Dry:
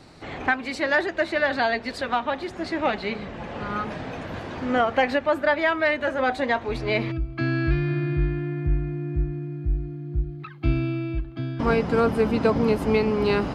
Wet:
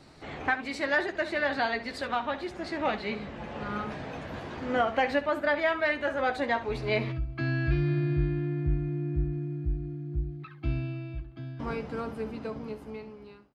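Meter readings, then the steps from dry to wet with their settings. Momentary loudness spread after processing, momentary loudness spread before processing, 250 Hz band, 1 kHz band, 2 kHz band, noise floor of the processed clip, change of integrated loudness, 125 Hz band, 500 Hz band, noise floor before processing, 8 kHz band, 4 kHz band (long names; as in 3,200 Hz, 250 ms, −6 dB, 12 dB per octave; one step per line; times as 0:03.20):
12 LU, 10 LU, −7.5 dB, −5.5 dB, −5.0 dB, −48 dBFS, −6.0 dB, −4.0 dB, −7.5 dB, −39 dBFS, can't be measured, −5.5 dB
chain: fade-out on the ending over 3.96 s
ambience of single reflections 14 ms −8 dB, 68 ms −13.5 dB
level −5.5 dB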